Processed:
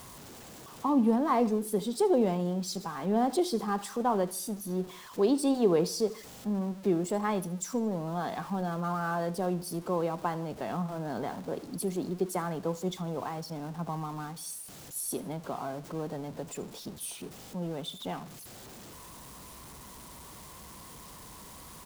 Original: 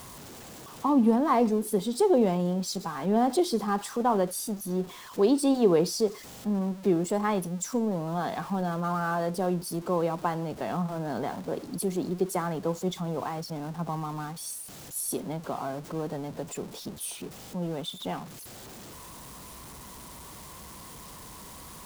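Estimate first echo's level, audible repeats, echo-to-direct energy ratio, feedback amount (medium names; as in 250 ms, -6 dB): -20.0 dB, 3, -19.0 dB, 46%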